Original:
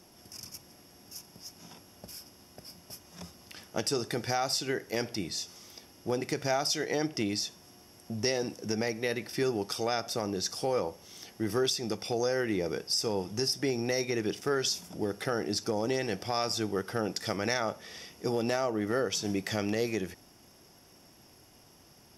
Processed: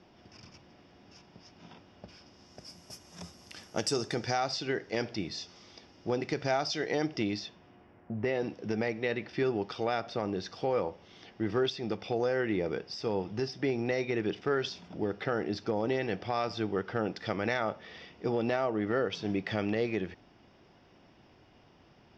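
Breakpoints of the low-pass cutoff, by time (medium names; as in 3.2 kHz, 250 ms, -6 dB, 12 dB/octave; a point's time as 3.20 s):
low-pass 24 dB/octave
2.17 s 3.9 kHz
2.77 s 9.2 kHz
3.91 s 9.2 kHz
4.48 s 4.7 kHz
7.27 s 4.7 kHz
8.13 s 1.8 kHz
8.43 s 3.7 kHz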